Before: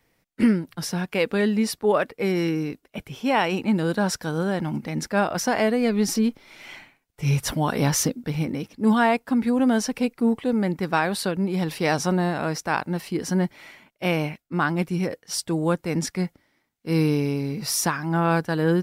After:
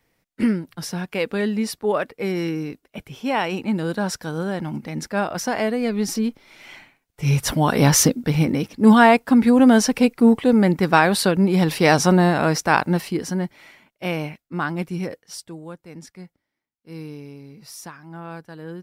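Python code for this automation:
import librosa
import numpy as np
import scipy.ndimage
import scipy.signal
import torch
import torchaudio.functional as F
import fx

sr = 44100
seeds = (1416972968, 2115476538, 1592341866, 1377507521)

y = fx.gain(x, sr, db=fx.line((6.71, -1.0), (7.98, 7.0), (12.94, 7.0), (13.37, -2.0), (15.12, -2.0), (15.65, -14.5)))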